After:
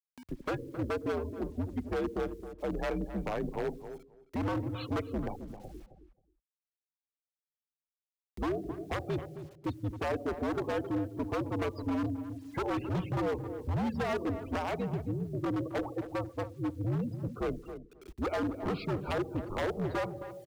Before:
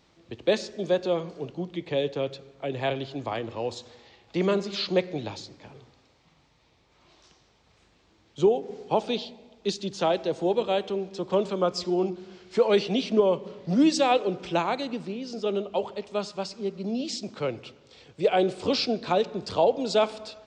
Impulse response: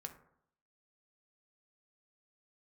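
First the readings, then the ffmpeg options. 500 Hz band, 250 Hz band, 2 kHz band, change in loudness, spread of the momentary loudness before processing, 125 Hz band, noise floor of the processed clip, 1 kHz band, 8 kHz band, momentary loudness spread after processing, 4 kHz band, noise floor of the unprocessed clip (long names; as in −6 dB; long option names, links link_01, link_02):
−10.0 dB, −5.0 dB, −4.5 dB, −8.0 dB, 11 LU, +1.5 dB, below −85 dBFS, −8.0 dB, −14.5 dB, 7 LU, −16.0 dB, −63 dBFS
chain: -filter_complex "[0:a]lowpass=1700,afftfilt=real='re*gte(hypot(re,im),0.0141)':imag='im*gte(hypot(re,im),0.0141)':win_size=1024:overlap=0.75,aeval=exprs='0.299*(cos(1*acos(clip(val(0)/0.299,-1,1)))-cos(1*PI/2))+0.0422*(cos(2*acos(clip(val(0)/0.299,-1,1)))-cos(2*PI/2))+0.00299*(cos(3*acos(clip(val(0)/0.299,-1,1)))-cos(3*PI/2))':channel_layout=same,acompressor=threshold=-26dB:ratio=3,aeval=exprs='0.0531*(abs(mod(val(0)/0.0531+3,4)-2)-1)':channel_layout=same,acrusher=bits=10:mix=0:aa=0.000001,acompressor=mode=upward:threshold=-39dB:ratio=2.5,afreqshift=-86,asoftclip=type=hard:threshold=-27dB,asplit=2[link_01][link_02];[link_02]adelay=267,lowpass=frequency=1300:poles=1,volume=-10dB,asplit=2[link_03][link_04];[link_04]adelay=267,lowpass=frequency=1300:poles=1,volume=0.15[link_05];[link_03][link_05]amix=inputs=2:normalize=0[link_06];[link_01][link_06]amix=inputs=2:normalize=0"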